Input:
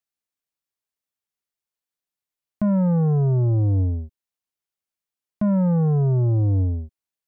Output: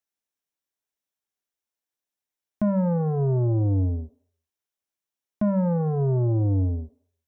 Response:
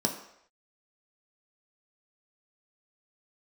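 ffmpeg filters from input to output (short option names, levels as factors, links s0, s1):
-filter_complex "[0:a]asplit=2[s0][s1];[1:a]atrim=start_sample=2205,lowshelf=f=190:g=-10[s2];[s1][s2]afir=irnorm=-1:irlink=0,volume=0.141[s3];[s0][s3]amix=inputs=2:normalize=0,volume=0.794"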